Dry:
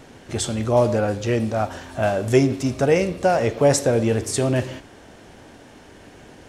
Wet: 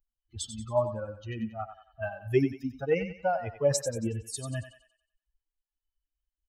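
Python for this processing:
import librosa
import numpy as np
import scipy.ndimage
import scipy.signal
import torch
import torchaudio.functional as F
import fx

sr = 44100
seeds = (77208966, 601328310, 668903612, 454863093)

y = fx.bin_expand(x, sr, power=3.0)
y = fx.echo_thinned(y, sr, ms=92, feedback_pct=43, hz=520.0, wet_db=-9.0)
y = F.gain(torch.from_numpy(y), -5.0).numpy()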